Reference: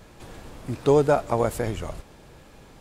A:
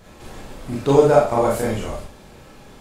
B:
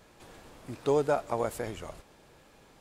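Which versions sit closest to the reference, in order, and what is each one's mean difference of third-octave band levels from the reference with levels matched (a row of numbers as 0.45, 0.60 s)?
B, A; 1.5, 3.0 dB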